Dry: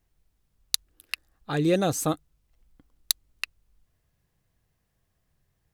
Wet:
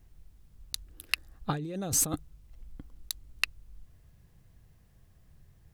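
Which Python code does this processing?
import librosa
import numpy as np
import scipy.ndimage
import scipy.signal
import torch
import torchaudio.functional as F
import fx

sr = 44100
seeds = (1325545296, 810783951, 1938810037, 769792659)

y = fx.low_shelf(x, sr, hz=240.0, db=10.0)
y = fx.over_compress(y, sr, threshold_db=-30.0, ratio=-1.0)
y = F.gain(torch.from_numpy(y), -1.5).numpy()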